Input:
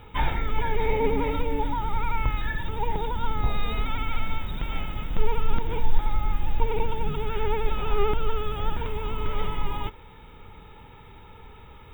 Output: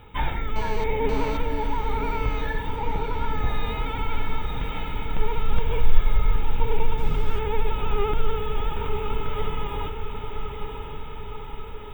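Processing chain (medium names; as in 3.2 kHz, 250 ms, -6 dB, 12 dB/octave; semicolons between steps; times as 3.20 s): 0.56–1.37 s: mobile phone buzz -35 dBFS; 2.76–3.31 s: low-pass 3.5 kHz; 5.56–6.36 s: comb 1.8 ms, depth 90%; echo that smears into a reverb 1002 ms, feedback 64%, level -6 dB; 6.97–7.38 s: added noise brown -31 dBFS; trim -1 dB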